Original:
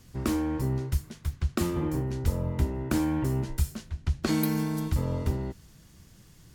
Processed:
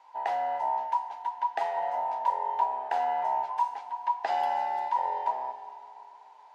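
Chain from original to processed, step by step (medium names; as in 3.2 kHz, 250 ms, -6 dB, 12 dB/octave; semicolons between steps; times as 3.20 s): every band turned upside down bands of 1 kHz; band-pass 530–2700 Hz; Schroeder reverb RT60 3.1 s, combs from 31 ms, DRR 9.5 dB; trim -1.5 dB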